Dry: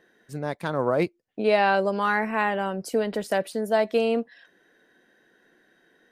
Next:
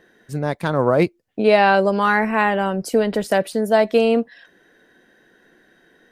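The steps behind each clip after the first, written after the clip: bass shelf 120 Hz +8 dB; trim +6 dB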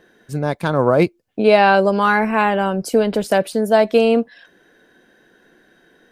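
band-stop 1.9 kHz, Q 11; trim +2 dB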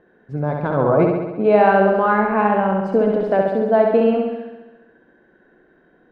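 low-pass 1.4 kHz 12 dB/octave; on a send: flutter echo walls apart 11.5 m, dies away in 1.1 s; on the sum: trim -2 dB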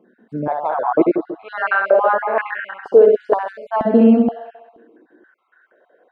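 random holes in the spectrogram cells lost 30%; step-sequenced high-pass 2.1 Hz 230–1800 Hz; trim -2.5 dB

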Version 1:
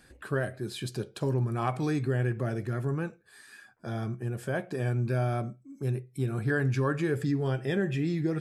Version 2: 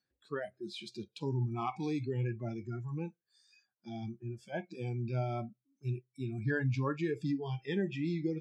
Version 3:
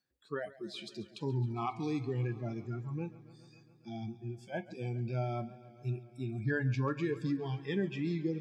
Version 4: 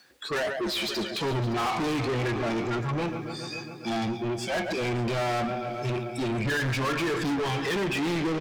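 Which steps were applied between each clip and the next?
spectral noise reduction 25 dB; Chebyshev band-pass 110–4600 Hz, order 2; trim -3.5 dB
modulated delay 138 ms, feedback 76%, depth 65 cents, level -18.5 dB
overdrive pedal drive 37 dB, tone 4.7 kHz, clips at -21 dBFS; multi-tap echo 114/567 ms -18/-18.5 dB

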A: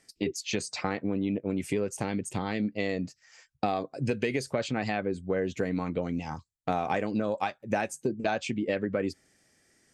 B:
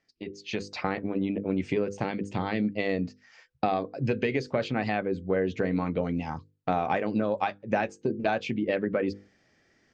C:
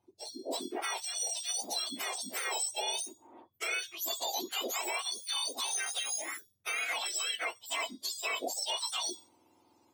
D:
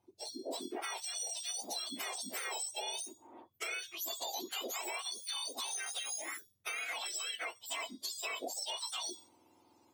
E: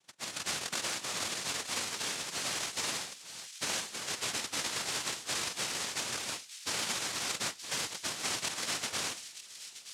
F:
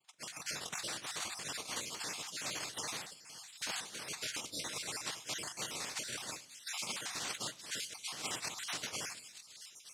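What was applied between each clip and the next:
Bessel low-pass 3.6 kHz, order 8; hum notches 50/100/150/200/250/300/350/400/450/500 Hz; level rider gain up to 11.5 dB; trim -8 dB
spectrum inverted on a logarithmic axis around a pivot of 1.3 kHz; peak limiter -24.5 dBFS, peak gain reduction 6 dB
compression 3:1, threshold -38 dBFS, peak gain reduction 6.5 dB
noise-vocoded speech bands 1; feedback echo behind a high-pass 923 ms, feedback 45%, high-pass 2.9 kHz, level -11 dB; trim +5 dB
random holes in the spectrogram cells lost 34%; simulated room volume 2800 m³, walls furnished, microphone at 0.5 m; trim -4 dB

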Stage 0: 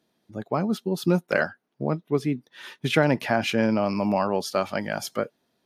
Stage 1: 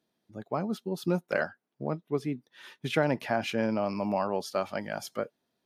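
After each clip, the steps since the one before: dynamic bell 690 Hz, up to +3 dB, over -29 dBFS, Q 0.78; trim -7.5 dB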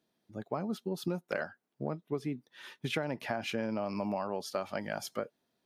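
compression 6:1, threshold -30 dBFS, peak gain reduction 10.5 dB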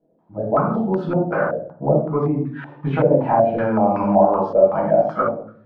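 simulated room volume 810 m³, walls furnished, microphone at 8 m; step-sequenced low-pass 5.3 Hz 530–1500 Hz; trim +2.5 dB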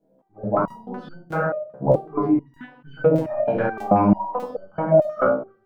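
crackling interface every 0.62 s, samples 1024, zero, from 0.68 s; resonator arpeggio 4.6 Hz 65–1500 Hz; trim +9 dB

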